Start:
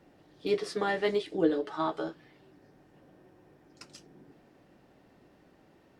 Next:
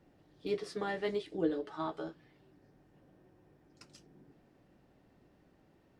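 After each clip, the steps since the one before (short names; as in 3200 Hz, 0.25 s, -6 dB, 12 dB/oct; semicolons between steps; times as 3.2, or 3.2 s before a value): low shelf 170 Hz +8 dB; gain -7.5 dB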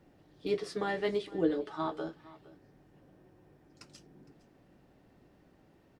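echo 0.461 s -20 dB; gain +3 dB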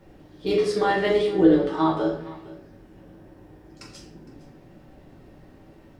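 shoebox room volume 110 m³, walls mixed, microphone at 1.1 m; gain +7 dB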